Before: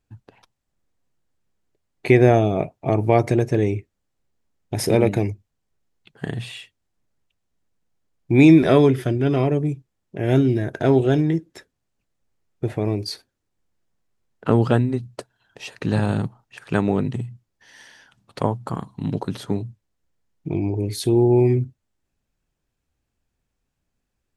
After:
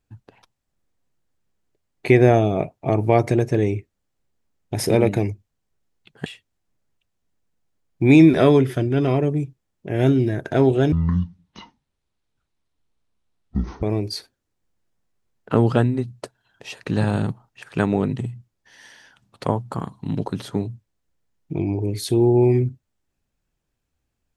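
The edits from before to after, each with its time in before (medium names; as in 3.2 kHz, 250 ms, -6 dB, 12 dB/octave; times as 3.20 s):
6.26–6.55 s: delete
11.21–12.78 s: speed 54%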